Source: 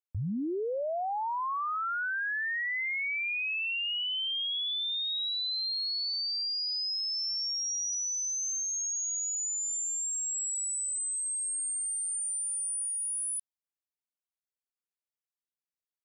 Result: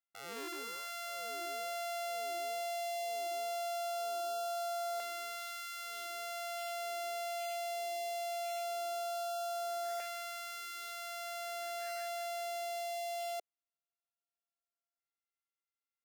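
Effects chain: sorted samples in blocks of 64 samples; LFO notch saw up 0.2 Hz 560–2500 Hz; ladder high-pass 340 Hz, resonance 25%

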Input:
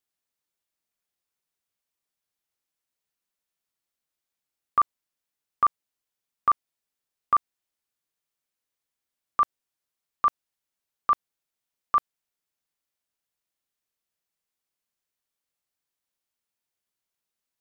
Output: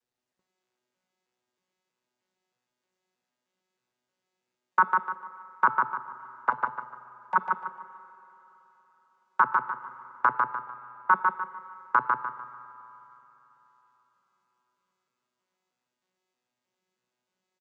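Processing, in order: vocoder on a broken chord bare fifth, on B2, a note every 314 ms; high-pass 220 Hz 12 dB/octave; de-hum 439.8 Hz, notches 11; peak limiter -16 dBFS, peak gain reduction 9.5 dB; 6.50–7.36 s: static phaser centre 350 Hz, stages 6; 10.27–11.11 s: distance through air 100 m; feedback delay 149 ms, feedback 34%, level -3.5 dB; reverberation RT60 3.7 s, pre-delay 47 ms, DRR 14 dB; trim +7.5 dB; Opus 32 kbps 48 kHz

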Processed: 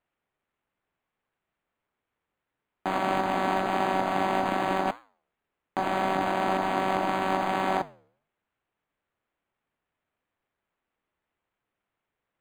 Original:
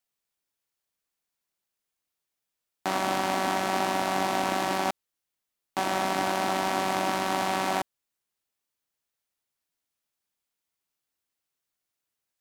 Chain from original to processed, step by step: flange 1.8 Hz, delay 7.7 ms, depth 6.8 ms, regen -86%; decimation joined by straight lines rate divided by 8×; trim +6 dB

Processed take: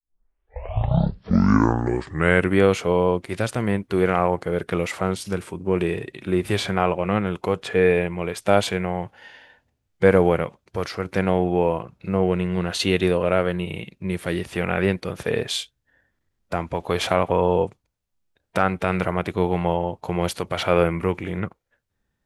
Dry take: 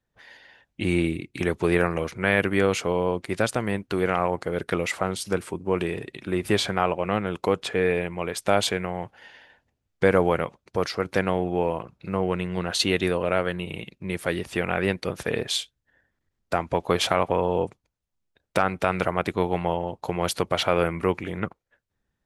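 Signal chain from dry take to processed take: tape start-up on the opening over 2.59 s; harmonic-percussive split harmonic +9 dB; trim -3 dB

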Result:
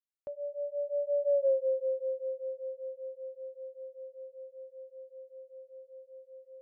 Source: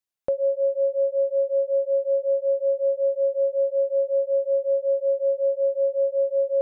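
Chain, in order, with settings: Doppler pass-by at 1.44 s, 16 m/s, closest 1.7 m; compression 2.5:1, threshold -32 dBFS, peak gain reduction 8 dB; trim +4.5 dB

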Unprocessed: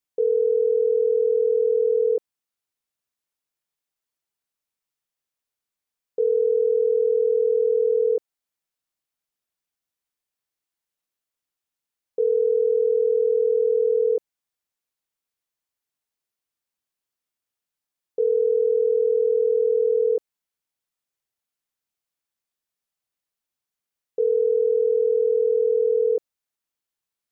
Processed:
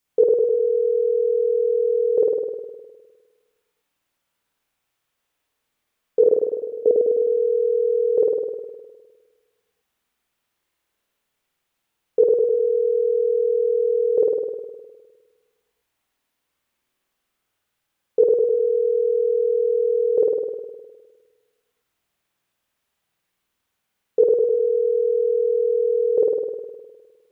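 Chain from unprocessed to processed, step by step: 6.26–6.86 s: peaking EQ 550 Hz -14 dB 2 oct; spring tank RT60 1.4 s, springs 51 ms, chirp 55 ms, DRR -6 dB; trim +7.5 dB

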